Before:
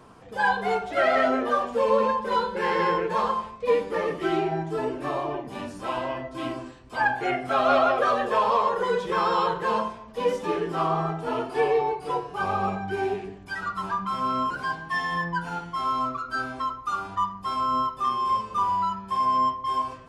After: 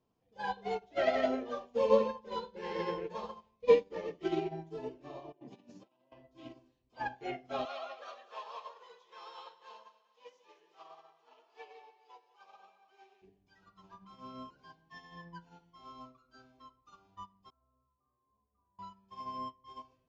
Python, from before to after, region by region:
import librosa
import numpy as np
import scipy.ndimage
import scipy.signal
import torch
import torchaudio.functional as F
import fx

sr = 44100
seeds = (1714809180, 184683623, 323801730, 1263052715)

y = fx.chain(x, sr, fx.highpass(hz=140.0, slope=24),
    fx.low_shelf(hz=310.0, db=5.0),
    fx.over_compress(threshold_db=-35.0, ratio=-0.5), at=(5.32, 6.12))
y = fx.chain(y, sr, fx.highpass(hz=920.0, slope=12),
    fx.echo_split(split_hz=920.0, low_ms=146, high_ms=211, feedback_pct=52, wet_db=-8.5), at=(7.65, 13.22))
y = fx.chain(y, sr, fx.cheby2_lowpass(hz=3500.0, order=4, stop_db=50),
    fx.peak_eq(hz=75.0, db=12.5, octaves=0.83),
    fx.stiff_resonator(f0_hz=68.0, decay_s=0.83, stiffness=0.002), at=(17.5, 18.79))
y = scipy.signal.sosfilt(scipy.signal.ellip(4, 1.0, 40, 6700.0, 'lowpass', fs=sr, output='sos'), y)
y = fx.peak_eq(y, sr, hz=1400.0, db=-11.5, octaves=1.1)
y = fx.upward_expand(y, sr, threshold_db=-39.0, expansion=2.5)
y = y * librosa.db_to_amplitude(2.5)